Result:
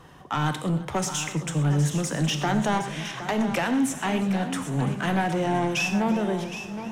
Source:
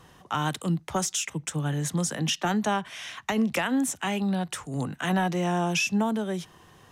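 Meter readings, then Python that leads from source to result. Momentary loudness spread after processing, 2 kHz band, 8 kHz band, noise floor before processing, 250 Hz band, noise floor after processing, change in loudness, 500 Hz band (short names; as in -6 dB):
5 LU, +1.5 dB, -1.5 dB, -55 dBFS, +2.0 dB, -38 dBFS, +2.0 dB, +2.5 dB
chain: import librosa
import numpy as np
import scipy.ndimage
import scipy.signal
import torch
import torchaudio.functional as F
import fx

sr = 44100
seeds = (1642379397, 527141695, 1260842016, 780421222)

y = fx.high_shelf(x, sr, hz=2800.0, db=-7.5)
y = fx.hum_notches(y, sr, base_hz=60, count=3)
y = 10.0 ** (-24.0 / 20.0) * np.tanh(y / 10.0 ** (-24.0 / 20.0))
y = y + 10.0 ** (-11.0 / 20.0) * np.pad(y, (int(765 * sr / 1000.0), 0))[:len(y)]
y = fx.rev_gated(y, sr, seeds[0], gate_ms=150, shape='flat', drr_db=7.5)
y = fx.echo_warbled(y, sr, ms=340, feedback_pct=79, rate_hz=2.8, cents=59, wet_db=-19.5)
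y = F.gain(torch.from_numpy(y), 5.0).numpy()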